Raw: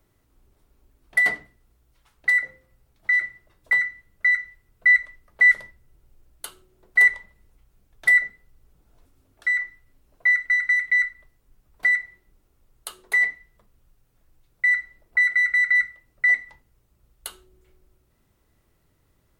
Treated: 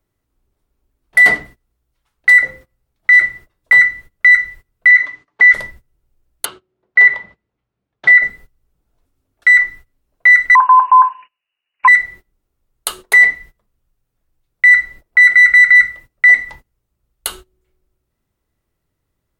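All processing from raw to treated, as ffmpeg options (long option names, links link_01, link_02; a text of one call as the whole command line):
ffmpeg -i in.wav -filter_complex "[0:a]asettb=1/sr,asplit=3[link_01][link_02][link_03];[link_01]atrim=end=4.904[link_04];[link_02]atrim=start=4.9:end=5.54,asetpts=PTS-STARTPTS,afade=type=in:duration=0.004:curve=qsin,afade=type=out:start_time=0.636:duration=0.004:curve=qsin,highpass=170,equalizer=frequency=190:width_type=q:width=4:gain=-5,equalizer=frequency=330:width_type=q:width=4:gain=4,equalizer=frequency=530:width_type=q:width=4:gain=-7,equalizer=frequency=1000:width_type=q:width=4:gain=5,equalizer=frequency=1900:width_type=q:width=4:gain=4,equalizer=frequency=5200:width_type=q:width=4:gain=-3,lowpass=frequency=6200:width=0.5412,lowpass=frequency=6200:width=1.3066,acompressor=threshold=-14dB:ratio=2.5:attack=3.2:release=140:knee=1:detection=peak,aecho=1:1:6.9:0.63,atrim=end_sample=28224[link_05];[link_03]atrim=start=5.536[link_06];[link_04][link_05]acrossfade=duration=0.004:curve1=hsin:curve2=qsin[link_07];[link_07][link_06]acrossfade=duration=0.004:curve1=qsin:curve2=hsin,asettb=1/sr,asplit=3[link_08][link_09][link_10];[link_08]atrim=end=6.454[link_11];[link_09]atrim=start=6.45:end=8.23,asetpts=PTS-STARTPTS,afade=type=in:duration=0.004:curve=qsin,afade=type=out:start_time=1.776:duration=0.004:curve=qsin,highpass=120,lowpass=4800,aemphasis=mode=reproduction:type=50kf[link_12];[link_10]atrim=start=8.226[link_13];[link_11][link_12]acrossfade=duration=0.004:curve1=hsin:curve2=qsin[link_14];[link_14][link_13]acrossfade=duration=0.004:curve1=qsin:curve2=hsin,asettb=1/sr,asplit=3[link_15][link_16][link_17];[link_15]atrim=end=10.554[link_18];[link_16]atrim=start=10.55:end=11.88,asetpts=PTS-STARTPTS,afade=type=in:duration=0.004:curve=qsin,afade=type=out:start_time=1.326:duration=0.004:curve=qsin,highpass=140,lowpass=frequency=2600:width_type=q:width=0.5098,lowpass=frequency=2600:width_type=q:width=0.6013,lowpass=frequency=2600:width_type=q:width=0.9,lowpass=frequency=2600:width_type=q:width=2.563,afreqshift=-3000[link_19];[link_17]atrim=start=11.876[link_20];[link_18][link_19]acrossfade=duration=0.004:curve1=hsin:curve2=qsin[link_21];[link_21][link_20]acrossfade=duration=0.004:curve1=qsin:curve2=hsin,agate=range=-22dB:threshold=-48dB:ratio=16:detection=peak,alimiter=level_in=16dB:limit=-1dB:release=50:level=0:latency=1,volume=-1dB" out.wav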